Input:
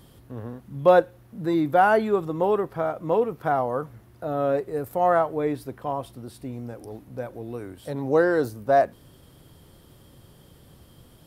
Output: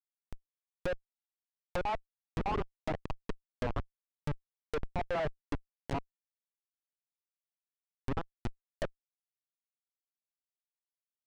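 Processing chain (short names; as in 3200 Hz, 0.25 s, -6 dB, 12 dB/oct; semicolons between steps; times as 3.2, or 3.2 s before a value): random spectral dropouts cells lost 75%; Schmitt trigger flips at -29.5 dBFS; treble ducked by the level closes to 2200 Hz, closed at -34 dBFS; gain +2 dB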